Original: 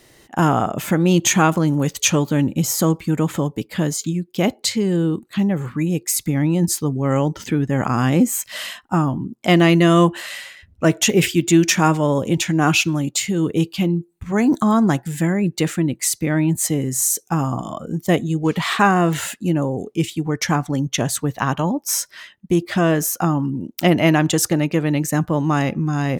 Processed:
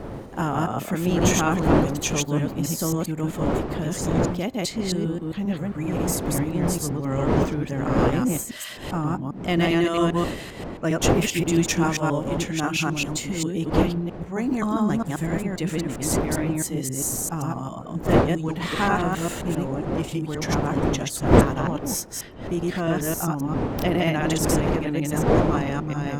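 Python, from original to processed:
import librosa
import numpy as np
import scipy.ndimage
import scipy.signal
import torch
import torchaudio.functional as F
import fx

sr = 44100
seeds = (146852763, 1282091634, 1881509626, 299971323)

y = fx.reverse_delay(x, sr, ms=133, wet_db=0)
y = fx.dmg_wind(y, sr, seeds[0], corner_hz=450.0, level_db=-18.0)
y = y * librosa.db_to_amplitude(-9.5)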